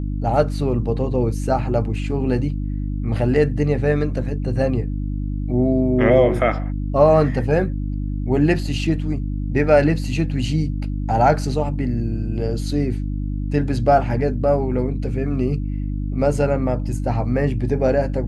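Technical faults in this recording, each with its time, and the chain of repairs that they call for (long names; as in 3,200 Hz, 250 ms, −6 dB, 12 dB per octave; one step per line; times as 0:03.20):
mains hum 50 Hz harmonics 6 −24 dBFS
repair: hum removal 50 Hz, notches 6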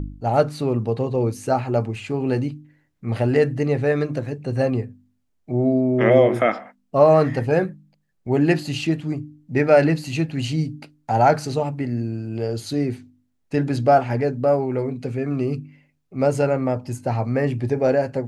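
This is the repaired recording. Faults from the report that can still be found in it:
none of them is left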